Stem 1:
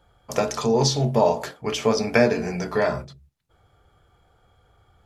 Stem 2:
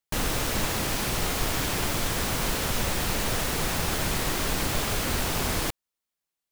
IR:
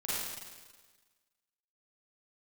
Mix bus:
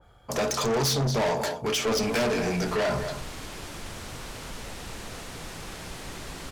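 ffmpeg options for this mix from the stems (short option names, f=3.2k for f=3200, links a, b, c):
-filter_complex "[0:a]acontrast=65,adynamicequalizer=threshold=0.0316:dfrequency=2300:dqfactor=0.7:tfrequency=2300:tqfactor=0.7:attack=5:release=100:ratio=0.375:range=2:mode=boostabove:tftype=highshelf,volume=-3dB,asplit=2[a][b];[b]volume=-14.5dB[c];[1:a]lowpass=10k,adelay=1800,volume=-12.5dB,asplit=2[d][e];[e]volume=-3.5dB[f];[c][f]amix=inputs=2:normalize=0,aecho=0:1:228:1[g];[a][d][g]amix=inputs=3:normalize=0,asoftclip=type=tanh:threshold=-22.5dB"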